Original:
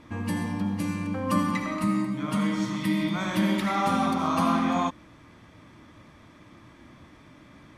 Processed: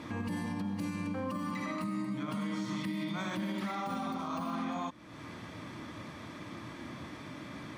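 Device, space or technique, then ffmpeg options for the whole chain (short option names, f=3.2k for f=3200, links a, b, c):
broadcast voice chain: -af "highpass=100,deesser=1,acompressor=threshold=-43dB:ratio=3,equalizer=f=4.3k:t=o:w=0.34:g=3,alimiter=level_in=10.5dB:limit=-24dB:level=0:latency=1:release=56,volume=-10.5dB,volume=7dB"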